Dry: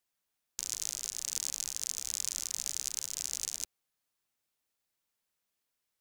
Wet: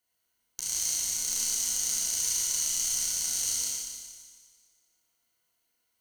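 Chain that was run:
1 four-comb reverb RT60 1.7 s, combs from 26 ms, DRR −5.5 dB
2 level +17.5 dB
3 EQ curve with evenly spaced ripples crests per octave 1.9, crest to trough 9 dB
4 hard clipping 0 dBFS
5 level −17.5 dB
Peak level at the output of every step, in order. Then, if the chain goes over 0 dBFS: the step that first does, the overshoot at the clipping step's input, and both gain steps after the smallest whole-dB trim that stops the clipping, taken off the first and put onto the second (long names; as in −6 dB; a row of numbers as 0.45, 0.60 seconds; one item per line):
−10.0, +7.5, +8.0, 0.0, −17.5 dBFS
step 2, 8.0 dB
step 2 +9.5 dB, step 5 −9.5 dB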